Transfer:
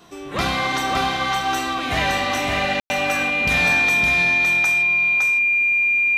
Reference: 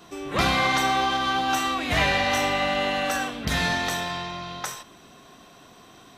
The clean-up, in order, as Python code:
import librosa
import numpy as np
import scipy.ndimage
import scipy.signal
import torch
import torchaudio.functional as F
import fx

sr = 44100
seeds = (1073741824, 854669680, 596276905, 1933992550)

y = fx.notch(x, sr, hz=2400.0, q=30.0)
y = fx.fix_ambience(y, sr, seeds[0], print_start_s=0.0, print_end_s=0.5, start_s=2.8, end_s=2.9)
y = fx.fix_echo_inverse(y, sr, delay_ms=563, level_db=-3.5)